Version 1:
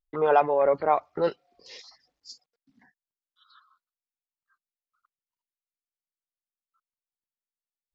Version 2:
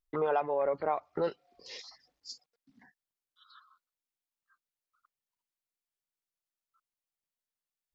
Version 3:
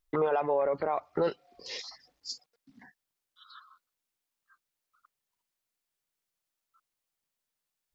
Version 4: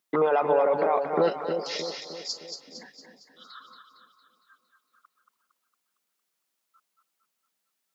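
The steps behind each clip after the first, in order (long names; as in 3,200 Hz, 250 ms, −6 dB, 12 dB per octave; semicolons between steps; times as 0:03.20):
downward compressor 2.5 to 1, threshold −30 dBFS, peak gain reduction 10.5 dB
brickwall limiter −25 dBFS, peak gain reduction 8 dB; level +6 dB
Chebyshev high-pass filter 180 Hz, order 3; echo with a time of its own for lows and highs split 660 Hz, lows 309 ms, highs 229 ms, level −6 dB; level +5.5 dB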